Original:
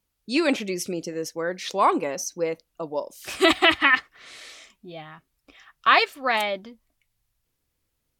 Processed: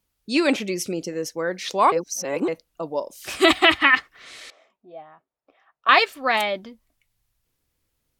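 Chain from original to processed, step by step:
0:01.92–0:02.48: reverse
0:04.50–0:05.89: resonant band-pass 650 Hz, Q 1.8
level +2 dB

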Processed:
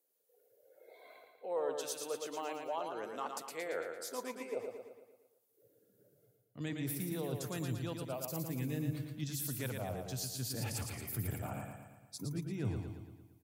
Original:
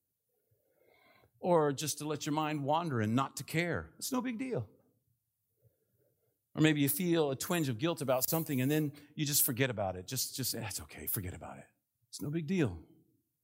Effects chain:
reversed playback
downward compressor 6 to 1, threshold −44 dBFS, peak gain reduction 21 dB
reversed playback
high-pass filter sweep 490 Hz → 110 Hz, 0:05.26–0:06.47
repeating echo 114 ms, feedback 54%, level −5 dB
level +4 dB

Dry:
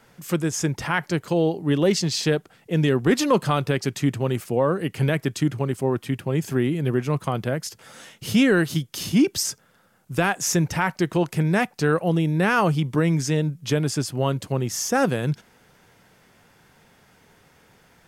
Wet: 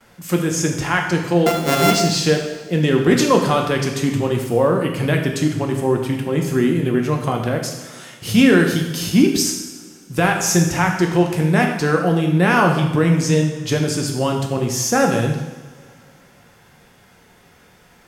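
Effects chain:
0:01.46–0:01.91: samples sorted by size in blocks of 64 samples
coupled-rooms reverb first 0.98 s, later 3.2 s, from −20 dB, DRR 1.5 dB
noise gate with hold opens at −48 dBFS
level +3 dB

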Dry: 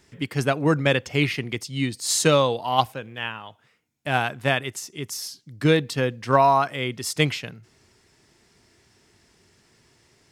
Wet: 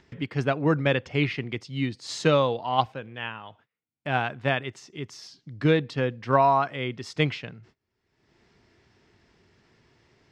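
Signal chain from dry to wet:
noise gate −53 dBFS, range −31 dB
upward compression, threshold −32 dBFS
high-frequency loss of the air 170 metres
level −2 dB

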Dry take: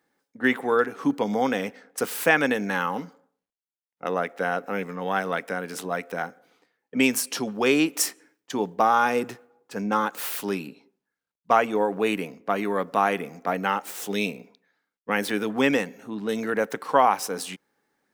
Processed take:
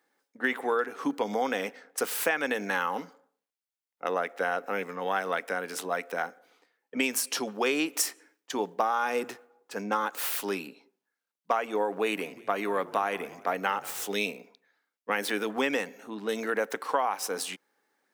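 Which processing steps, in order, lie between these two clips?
Bessel high-pass filter 370 Hz, order 2
downward compressor 6 to 1, threshold −23 dBFS, peak gain reduction 9.5 dB
0:11.97–0:14.06: echo with shifted repeats 181 ms, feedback 44%, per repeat −47 Hz, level −19.5 dB

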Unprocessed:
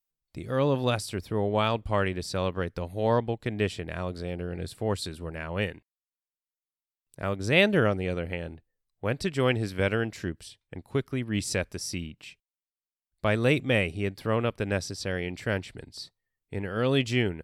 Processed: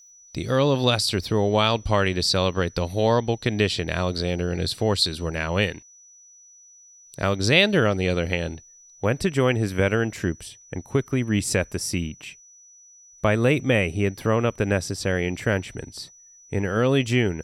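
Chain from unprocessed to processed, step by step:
parametric band 4,300 Hz +11 dB 0.85 octaves, from 0:09.05 −6 dB
downward compressor 2 to 1, threshold −27 dBFS, peak gain reduction 8 dB
steady tone 5,900 Hz −57 dBFS
level +8.5 dB

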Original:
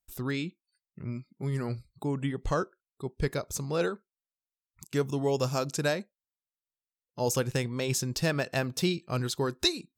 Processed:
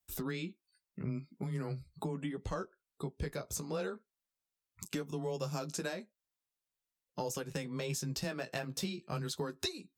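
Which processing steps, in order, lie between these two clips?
frequency shifter +13 Hz
downward compressor 6 to 1, threshold −38 dBFS, peak gain reduction 16.5 dB
flanger 0.41 Hz, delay 9.7 ms, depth 7.1 ms, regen −24%
level +6.5 dB

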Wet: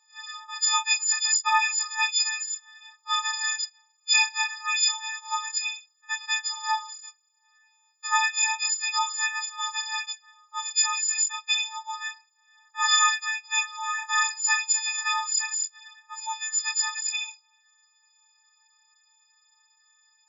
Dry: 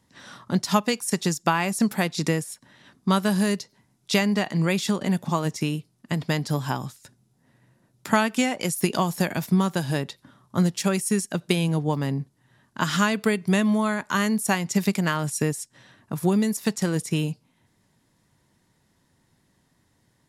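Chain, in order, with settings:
every partial snapped to a pitch grid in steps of 6 semitones
multi-voice chorus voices 2, 0.32 Hz, delay 24 ms, depth 3 ms
brick-wall band-pass 810–7,500 Hz

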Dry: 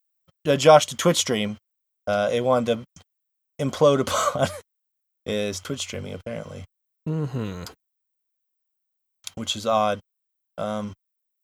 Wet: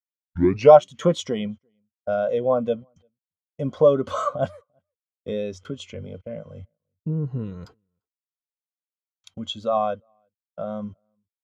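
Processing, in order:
turntable start at the beginning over 0.73 s
high-shelf EQ 7,300 Hz −9.5 dB
in parallel at +2 dB: downward compressor, threshold −30 dBFS, peak gain reduction 20 dB
on the sum: slap from a distant wall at 59 metres, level −27 dB
every bin expanded away from the loudest bin 1.5 to 1
level +1 dB

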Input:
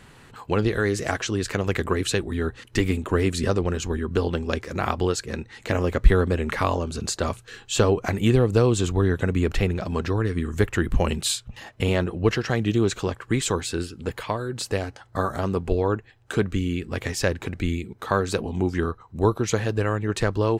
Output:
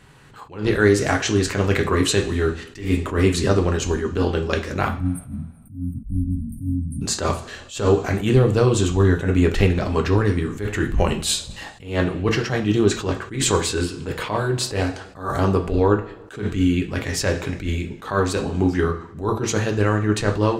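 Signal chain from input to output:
time-frequency box erased 0:04.88–0:07.02, 300–8,400 Hz
automatic gain control
convolution reverb, pre-delay 3 ms, DRR 3.5 dB
level that may rise only so fast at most 140 dB per second
level −2.5 dB

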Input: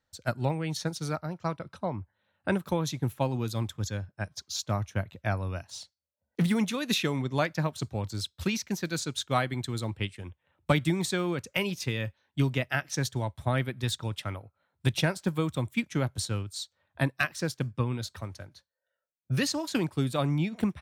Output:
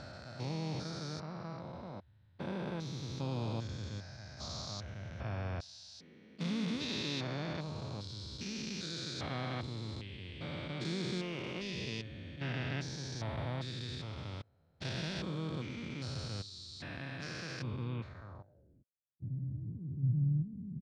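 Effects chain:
spectrum averaged block by block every 400 ms
pitch-shifted copies added −3 semitones −17 dB, +4 semitones −13 dB
low-pass filter sweep 4,900 Hz → 130 Hz, 0:17.82–0:19.05
level −5.5 dB

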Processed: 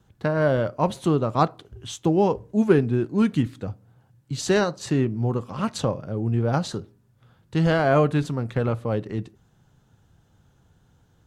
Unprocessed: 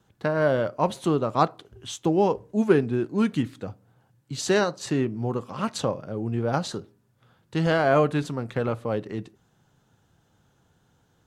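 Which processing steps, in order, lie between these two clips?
low-shelf EQ 120 Hz +12 dB

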